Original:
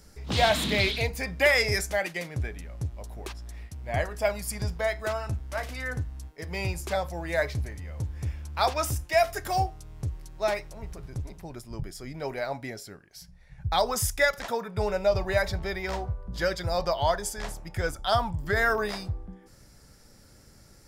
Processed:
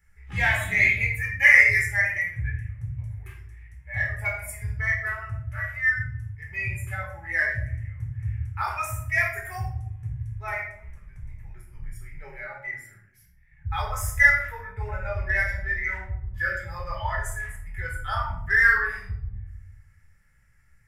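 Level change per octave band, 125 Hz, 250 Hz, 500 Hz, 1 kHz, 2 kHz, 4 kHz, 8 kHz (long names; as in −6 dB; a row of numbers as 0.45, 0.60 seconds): +1.5 dB, can't be measured, −12.0 dB, −3.5 dB, +9.5 dB, −11.0 dB, −4.5 dB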